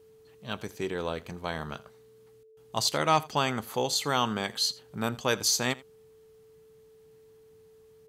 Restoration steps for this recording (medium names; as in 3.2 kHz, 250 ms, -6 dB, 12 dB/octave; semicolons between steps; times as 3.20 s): clip repair -12.5 dBFS; band-stop 440 Hz, Q 30; inverse comb 84 ms -21.5 dB